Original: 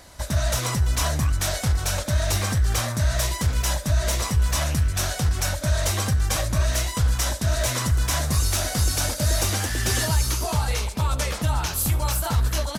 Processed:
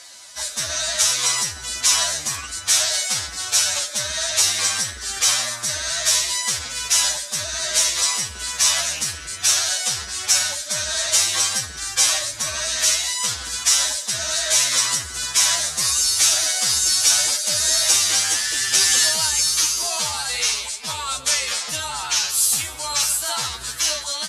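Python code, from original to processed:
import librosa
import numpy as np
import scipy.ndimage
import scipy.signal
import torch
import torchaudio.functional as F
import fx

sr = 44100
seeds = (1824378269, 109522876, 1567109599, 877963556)

y = fx.octave_divider(x, sr, octaves=2, level_db=-6.0)
y = fx.weighting(y, sr, curve='ITU-R 468')
y = fx.stretch_vocoder(y, sr, factor=1.9)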